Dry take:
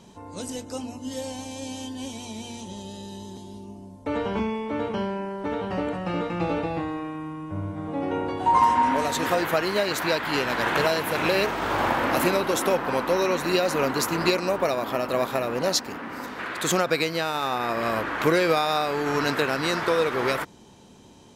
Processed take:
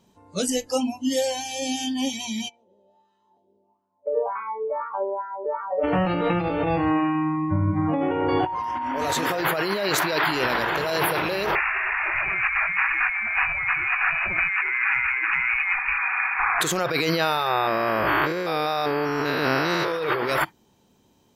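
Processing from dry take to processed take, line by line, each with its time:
2.48–5.83 s: wah-wah 1 Hz -> 3.3 Hz 480–1300 Hz, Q 4.2
11.55–16.61 s: frequency inversion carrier 2.7 kHz
17.48–19.92 s: spectrogram pixelated in time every 200 ms
whole clip: spectral noise reduction 22 dB; peak limiter -16.5 dBFS; compressor with a negative ratio -31 dBFS, ratio -1; trim +7.5 dB

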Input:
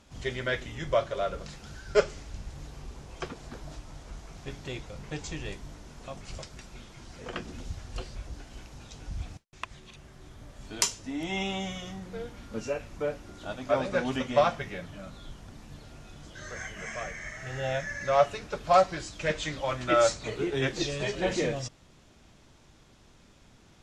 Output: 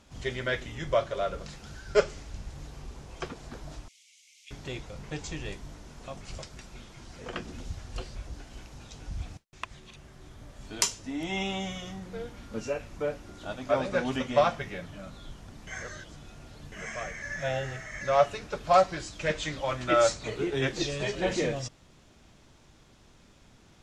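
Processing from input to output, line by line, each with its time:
3.88–4.51 s: rippled Chebyshev high-pass 2.1 kHz, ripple 3 dB
15.67–16.72 s: reverse
17.22–18.01 s: reverse

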